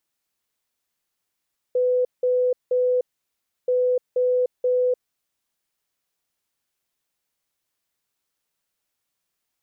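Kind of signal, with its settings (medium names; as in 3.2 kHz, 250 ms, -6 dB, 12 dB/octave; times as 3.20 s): beep pattern sine 500 Hz, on 0.30 s, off 0.18 s, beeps 3, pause 0.67 s, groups 2, -17 dBFS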